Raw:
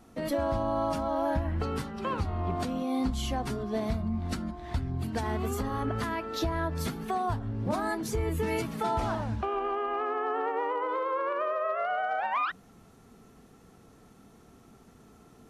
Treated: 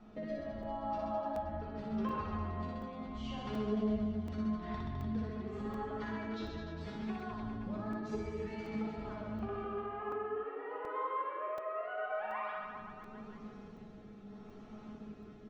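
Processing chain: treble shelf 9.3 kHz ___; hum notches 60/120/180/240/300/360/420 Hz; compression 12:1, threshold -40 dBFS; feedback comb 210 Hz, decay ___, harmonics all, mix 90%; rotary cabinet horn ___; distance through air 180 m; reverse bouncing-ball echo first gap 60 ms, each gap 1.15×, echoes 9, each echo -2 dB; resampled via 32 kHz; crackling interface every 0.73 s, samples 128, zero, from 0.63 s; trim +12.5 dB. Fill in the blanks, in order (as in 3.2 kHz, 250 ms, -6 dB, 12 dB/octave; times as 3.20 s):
-9.5 dB, 0.2 s, 0.8 Hz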